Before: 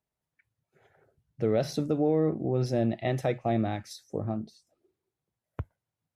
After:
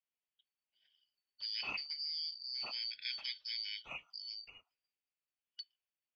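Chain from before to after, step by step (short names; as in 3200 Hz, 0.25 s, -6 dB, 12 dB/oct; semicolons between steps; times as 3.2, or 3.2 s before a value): four-band scrambler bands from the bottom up 4321; ladder low-pass 3000 Hz, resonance 65%; mismatched tape noise reduction decoder only; gain +5.5 dB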